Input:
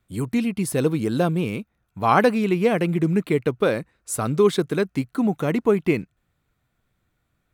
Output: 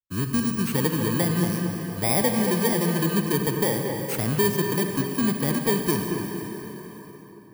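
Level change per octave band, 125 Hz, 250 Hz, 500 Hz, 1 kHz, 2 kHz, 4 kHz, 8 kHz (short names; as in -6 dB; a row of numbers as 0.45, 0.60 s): 0.0, -1.5, -5.0, -5.5, -1.5, +4.0, +5.0 dB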